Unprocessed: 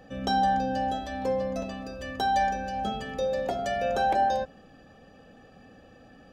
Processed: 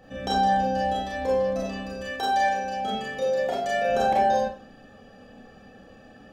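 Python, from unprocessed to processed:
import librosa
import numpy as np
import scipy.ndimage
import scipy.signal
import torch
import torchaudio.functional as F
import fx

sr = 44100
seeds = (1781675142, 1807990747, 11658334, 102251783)

y = fx.low_shelf(x, sr, hz=170.0, db=-11.0, at=(2.01, 3.89))
y = fx.rev_schroeder(y, sr, rt60_s=0.34, comb_ms=28, drr_db=-4.5)
y = F.gain(torch.from_numpy(y), -2.0).numpy()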